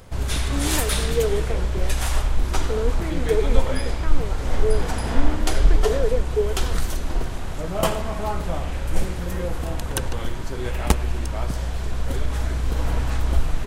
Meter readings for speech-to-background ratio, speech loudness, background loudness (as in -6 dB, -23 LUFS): -3.0 dB, -29.0 LUFS, -26.0 LUFS